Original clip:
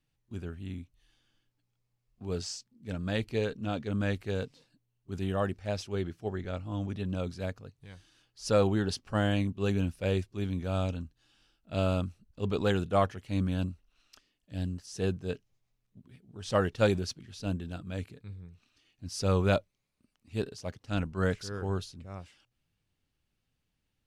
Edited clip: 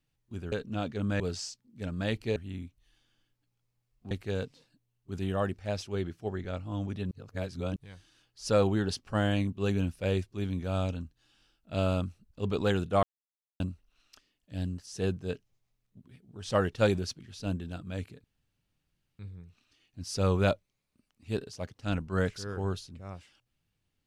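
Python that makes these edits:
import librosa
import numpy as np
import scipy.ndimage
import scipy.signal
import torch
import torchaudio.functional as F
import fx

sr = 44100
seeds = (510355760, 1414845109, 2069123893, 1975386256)

y = fx.edit(x, sr, fx.swap(start_s=0.52, length_s=1.75, other_s=3.43, other_length_s=0.68),
    fx.reverse_span(start_s=7.11, length_s=0.65),
    fx.silence(start_s=13.03, length_s=0.57),
    fx.insert_room_tone(at_s=18.24, length_s=0.95), tone=tone)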